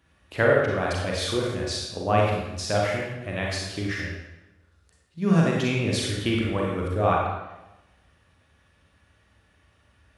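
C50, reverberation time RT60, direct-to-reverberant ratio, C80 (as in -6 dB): -0.5 dB, 0.95 s, -3.0 dB, 3.0 dB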